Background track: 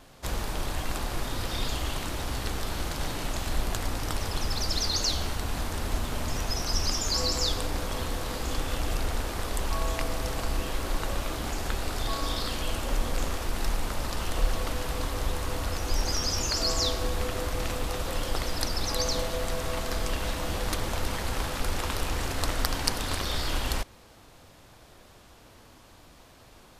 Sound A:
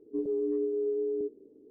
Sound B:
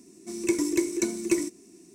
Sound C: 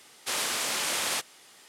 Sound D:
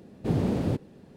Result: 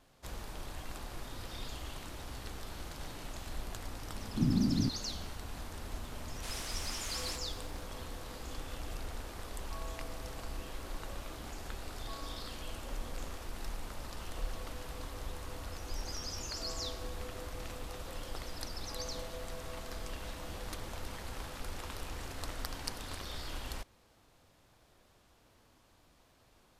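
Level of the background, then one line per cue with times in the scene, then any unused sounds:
background track -12.5 dB
4.12 add D -17.5 dB + resonant low shelf 360 Hz +11 dB, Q 3
6.16 add C -14.5 dB + lo-fi delay 90 ms, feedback 80%, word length 8-bit, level -15 dB
not used: A, B

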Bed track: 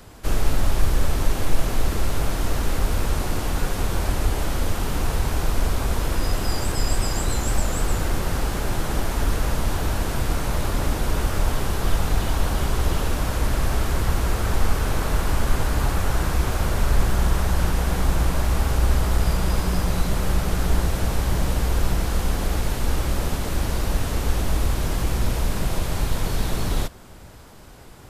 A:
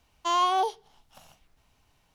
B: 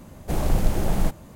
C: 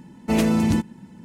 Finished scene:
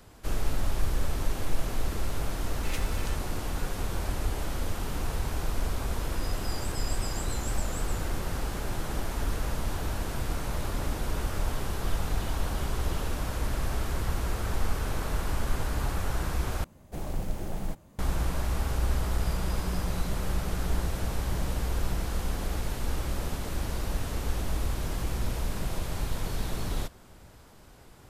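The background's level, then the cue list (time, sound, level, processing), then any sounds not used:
bed track -8 dB
2.35 add C -8 dB + Chebyshev high-pass 1800 Hz
16.64 replace with B -11 dB
not used: A

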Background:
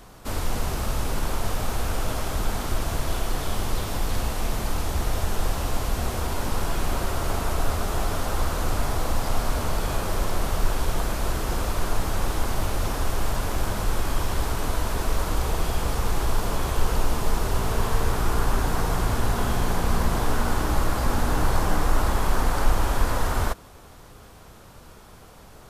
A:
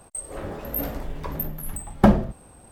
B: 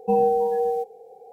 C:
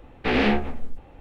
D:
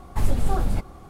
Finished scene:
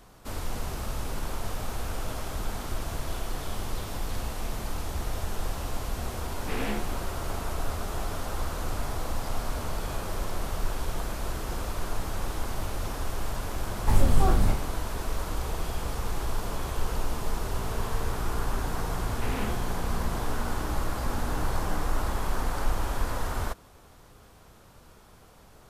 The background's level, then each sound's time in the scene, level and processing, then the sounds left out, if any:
background -6.5 dB
6.23 add C -12.5 dB
13.71 add D -0.5 dB + spectral trails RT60 0.43 s
18.96 add C -15.5 dB
not used: A, B

